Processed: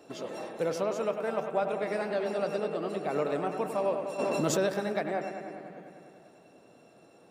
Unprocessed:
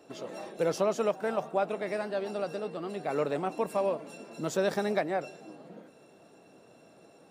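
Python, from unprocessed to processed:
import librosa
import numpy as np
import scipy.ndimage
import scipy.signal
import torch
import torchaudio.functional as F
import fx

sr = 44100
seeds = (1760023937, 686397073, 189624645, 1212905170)

p1 = fx.rider(x, sr, range_db=3, speed_s=0.5)
p2 = p1 + fx.echo_bbd(p1, sr, ms=99, stages=2048, feedback_pct=76, wet_db=-8.0, dry=0)
p3 = fx.env_flatten(p2, sr, amount_pct=70, at=(4.18, 4.66), fade=0.02)
y = p3 * 10.0 ** (-1.0 / 20.0)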